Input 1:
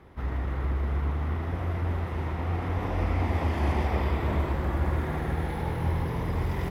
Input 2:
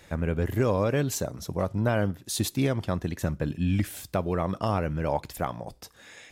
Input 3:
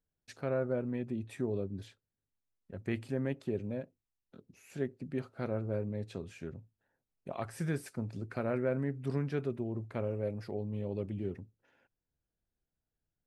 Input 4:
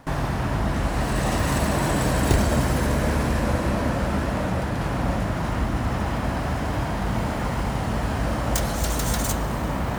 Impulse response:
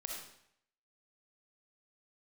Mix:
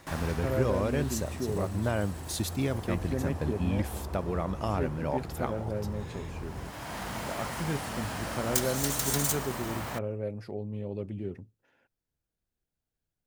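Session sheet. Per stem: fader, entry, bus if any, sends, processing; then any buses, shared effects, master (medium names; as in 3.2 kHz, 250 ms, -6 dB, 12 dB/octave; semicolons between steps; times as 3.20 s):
-11.0 dB, 0.00 s, no send, low-pass 1.3 kHz 24 dB/octave
-4.5 dB, 0.00 s, no send, none
+1.0 dB, 0.00 s, no send, none
-7.5 dB, 0.00 s, no send, tilt EQ +2.5 dB/octave; auto duck -17 dB, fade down 1.45 s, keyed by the second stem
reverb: none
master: none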